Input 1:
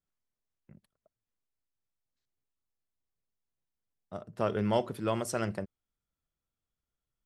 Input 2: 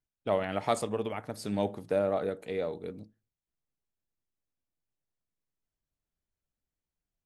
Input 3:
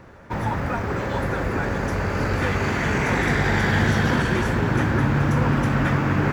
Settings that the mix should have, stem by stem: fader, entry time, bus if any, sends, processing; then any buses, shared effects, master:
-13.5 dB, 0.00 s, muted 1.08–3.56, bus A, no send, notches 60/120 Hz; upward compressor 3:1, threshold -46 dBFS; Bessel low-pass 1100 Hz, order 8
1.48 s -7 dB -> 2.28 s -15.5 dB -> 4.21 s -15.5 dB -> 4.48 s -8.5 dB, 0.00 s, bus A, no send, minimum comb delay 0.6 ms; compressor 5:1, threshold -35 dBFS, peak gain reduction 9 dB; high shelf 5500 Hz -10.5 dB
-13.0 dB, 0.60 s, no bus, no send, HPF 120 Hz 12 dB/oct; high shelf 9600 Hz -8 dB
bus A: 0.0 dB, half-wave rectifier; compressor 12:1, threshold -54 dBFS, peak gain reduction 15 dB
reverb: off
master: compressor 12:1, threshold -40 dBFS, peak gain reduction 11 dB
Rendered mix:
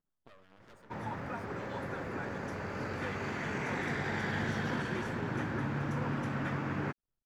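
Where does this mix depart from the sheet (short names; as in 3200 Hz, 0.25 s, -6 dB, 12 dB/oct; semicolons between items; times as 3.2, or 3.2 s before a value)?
stem 1 -13.5 dB -> -23.0 dB; stem 2: missing compressor 5:1, threshold -35 dBFS, peak gain reduction 9 dB; master: missing compressor 12:1, threshold -40 dBFS, peak gain reduction 11 dB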